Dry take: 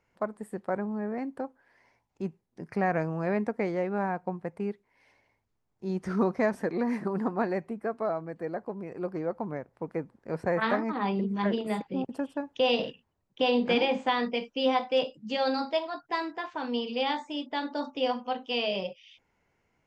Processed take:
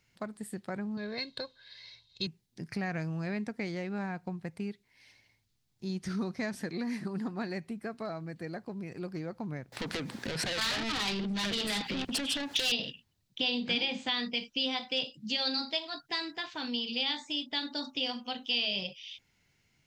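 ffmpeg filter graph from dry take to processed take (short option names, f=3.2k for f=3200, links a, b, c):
-filter_complex "[0:a]asettb=1/sr,asplit=3[a][b][c];[a]atrim=end=0.974[d];[b]atrim=start=0.97:end=2.27,asetpts=PTS-STARTPTS,afade=t=in:d=0.004:c=qsin,afade=t=out:st=1.296:d=0.004:c=qsin,lowpass=f=3.9k:t=q:w=14,aemphasis=mode=production:type=cd,aecho=1:1:1.9:0.72,atrim=end_sample=57330[e];[c]atrim=start=2.266[f];[d][e]acrossfade=d=0.004:c1=hsin:c2=qsin[g];[g][f]acrossfade=d=0.004:c1=qsin:c2=hsin,asettb=1/sr,asplit=3[h][i][j];[h]atrim=end=9.724[k];[i]atrim=start=9.72:end=12.72,asetpts=PTS-STARTPTS,afade=t=in:d=0.004:c=qsin,afade=t=out:st=2.996:d=0.004:c=qsin,acompressor=threshold=-45dB:ratio=3:attack=3.2:release=140:knee=1:detection=peak,asplit=2[l][m];[m]highpass=f=720:p=1,volume=37dB,asoftclip=type=tanh:threshold=-19.5dB[n];[l][n]amix=inputs=2:normalize=0,lowpass=f=4.8k:p=1,volume=-6dB,bandreject=f=60:t=h:w=6,bandreject=f=120:t=h:w=6,bandreject=f=180:t=h:w=6,bandreject=f=240:t=h:w=6[o];[j]atrim=start=12.716[p];[k][o]acrossfade=d=0.004:c1=hsin:c2=qsin[q];[q][p]acrossfade=d=0.004:c1=qsin:c2=hsin,equalizer=f=125:t=o:w=1:g=6,equalizer=f=500:t=o:w=1:g=-7,equalizer=f=1k:t=o:w=1:g=-7,equalizer=f=4k:t=o:w=1:g=8,acompressor=threshold=-36dB:ratio=2,highshelf=f=3k:g=9"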